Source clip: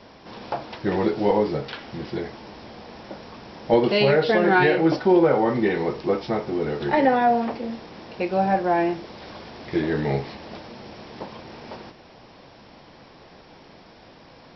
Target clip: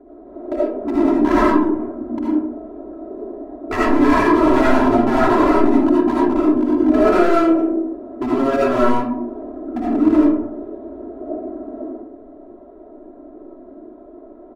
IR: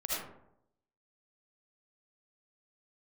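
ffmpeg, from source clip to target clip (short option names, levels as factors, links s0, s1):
-filter_complex "[0:a]firequalizer=gain_entry='entry(100,0);entry(210,-11);entry(360,15);entry(3700,-27)':delay=0.05:min_phase=1,asetrate=31183,aresample=44100,atempo=1.41421,aphaser=in_gain=1:out_gain=1:delay=4.3:decay=0.27:speed=0.73:type=triangular,aeval=exprs='0.422*(abs(mod(val(0)/0.422+3,4)-2)-1)':c=same,aecho=1:1:3:0.84[s0];[1:a]atrim=start_sample=2205[s1];[s0][s1]afir=irnorm=-1:irlink=0,volume=0.355"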